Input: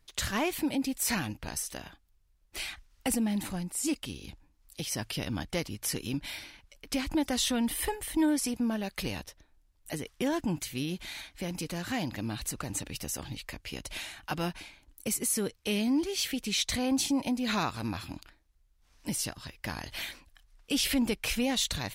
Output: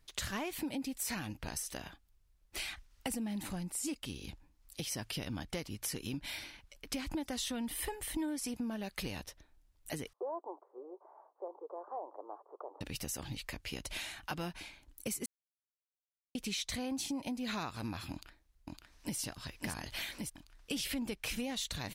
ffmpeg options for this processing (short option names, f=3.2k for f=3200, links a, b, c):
-filter_complex "[0:a]asettb=1/sr,asplit=3[a][b][c];[a]atrim=end=10.134[d];[b]atrim=start=10.13:end=12.81,asetpts=PTS-STARTPTS,afade=t=in:d=0.004:c=qsin,afade=t=out:st=2.676:d=0.004:c=qsin,asuperpass=centerf=660:order=12:qfactor=0.88[e];[c]atrim=start=12.806[f];[d][e]acrossfade=d=0.004:c1=hsin:c2=qsin[g];[g][f]acrossfade=d=0.004:c1=qsin:c2=hsin,asplit=2[h][i];[i]afade=t=in:st=18.11:d=0.01,afade=t=out:st=19.17:d=0.01,aecho=0:1:560|1120|1680|2240|2800|3360|3920|4480|5040|5600|6160|6720:0.707946|0.495562|0.346893|0.242825|0.169978|0.118984|0.0832891|0.0583024|0.0408117|0.0285682|0.0199977|0.0139984[j];[h][j]amix=inputs=2:normalize=0,asplit=3[k][l][m];[k]atrim=end=15.26,asetpts=PTS-STARTPTS,afade=t=out:st=15.256:d=0.004:c=hsin[n];[l]atrim=start=15.26:end=16.35,asetpts=PTS-STARTPTS,volume=0[o];[m]atrim=start=16.35,asetpts=PTS-STARTPTS,afade=t=in:d=0.004:c=hsin[p];[n][o][p]concat=n=3:v=0:a=1,acompressor=threshold=-35dB:ratio=4,volume=-1dB"